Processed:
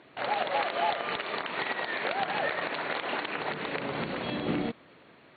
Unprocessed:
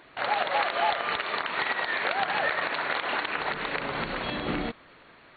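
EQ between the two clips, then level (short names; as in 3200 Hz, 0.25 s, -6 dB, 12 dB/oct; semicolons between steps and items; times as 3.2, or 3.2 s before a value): BPF 110–3400 Hz; bell 1400 Hz -8 dB 2 oct; +2.5 dB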